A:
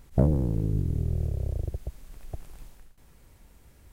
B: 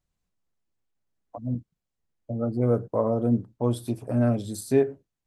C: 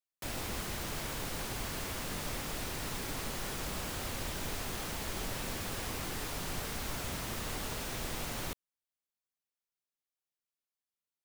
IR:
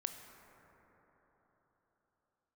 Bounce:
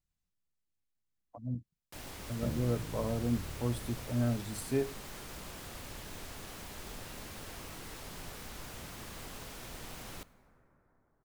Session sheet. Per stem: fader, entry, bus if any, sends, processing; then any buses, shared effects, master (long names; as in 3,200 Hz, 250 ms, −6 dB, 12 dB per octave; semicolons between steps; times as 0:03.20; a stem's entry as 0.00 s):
−16.0 dB, 2.25 s, no send, no processing
−5.5 dB, 0.00 s, no send, parametric band 560 Hz −6.5 dB 2.6 octaves
−10.5 dB, 1.70 s, send −5.5 dB, pitch modulation by a square or saw wave square 3.9 Hz, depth 100 cents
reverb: on, RT60 4.4 s, pre-delay 18 ms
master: no processing